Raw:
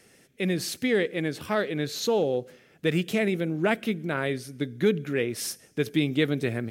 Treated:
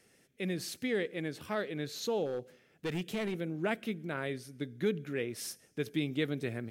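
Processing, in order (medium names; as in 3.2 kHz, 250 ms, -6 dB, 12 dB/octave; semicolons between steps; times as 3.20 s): 2.25–3.40 s: hard clipper -22 dBFS, distortion -19 dB; trim -8.5 dB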